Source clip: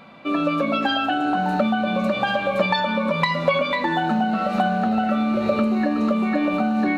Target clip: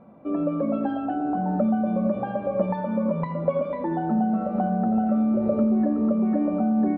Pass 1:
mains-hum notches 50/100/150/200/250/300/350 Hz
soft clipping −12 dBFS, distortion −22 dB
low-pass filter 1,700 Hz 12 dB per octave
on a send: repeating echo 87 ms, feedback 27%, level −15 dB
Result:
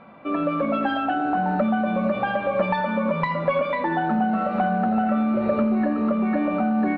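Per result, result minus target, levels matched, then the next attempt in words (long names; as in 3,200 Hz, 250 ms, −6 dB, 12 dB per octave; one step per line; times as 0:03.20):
2,000 Hz band +13.5 dB; soft clipping: distortion +16 dB
mains-hum notches 50/100/150/200/250/300/350 Hz
soft clipping −12 dBFS, distortion −22 dB
low-pass filter 570 Hz 12 dB per octave
on a send: repeating echo 87 ms, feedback 27%, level −15 dB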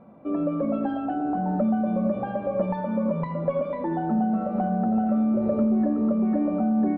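soft clipping: distortion +16 dB
mains-hum notches 50/100/150/200/250/300/350 Hz
soft clipping −2.5 dBFS, distortion −38 dB
low-pass filter 570 Hz 12 dB per octave
on a send: repeating echo 87 ms, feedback 27%, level −15 dB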